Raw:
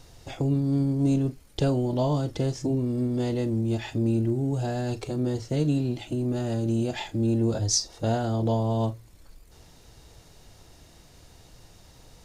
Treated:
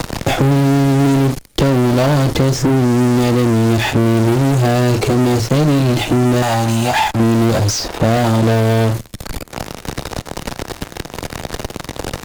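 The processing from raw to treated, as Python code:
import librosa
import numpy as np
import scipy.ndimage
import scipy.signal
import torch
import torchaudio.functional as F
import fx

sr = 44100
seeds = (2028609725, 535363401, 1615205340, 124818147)

p1 = fx.low_shelf_res(x, sr, hz=600.0, db=-12.0, q=3.0, at=(6.42, 7.2))
p2 = fx.leveller(p1, sr, passes=2)
p3 = fx.fuzz(p2, sr, gain_db=37.0, gate_db=-42.0)
p4 = p2 + F.gain(torch.from_numpy(p3), -4.0).numpy()
y = fx.band_squash(p4, sr, depth_pct=70)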